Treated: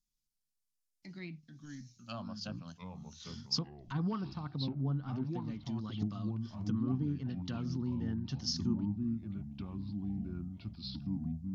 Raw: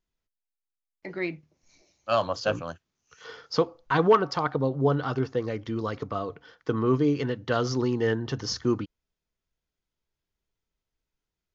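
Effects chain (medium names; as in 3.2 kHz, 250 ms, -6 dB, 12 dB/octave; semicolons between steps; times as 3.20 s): low-pass that closes with the level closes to 1.3 kHz, closed at -22.5 dBFS; peaking EQ 81 Hz -13.5 dB 0.85 oct; ever faster or slower copies 163 ms, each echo -4 st, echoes 3, each echo -6 dB; FFT filter 220 Hz 0 dB, 460 Hz -26 dB, 720 Hz -18 dB, 1.9 kHz -15 dB, 5.2 kHz +6 dB; trim -2.5 dB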